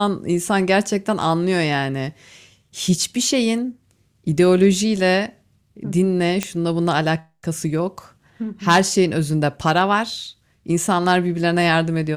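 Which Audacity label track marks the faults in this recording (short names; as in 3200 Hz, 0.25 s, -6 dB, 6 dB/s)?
6.430000	6.430000	pop -6 dBFS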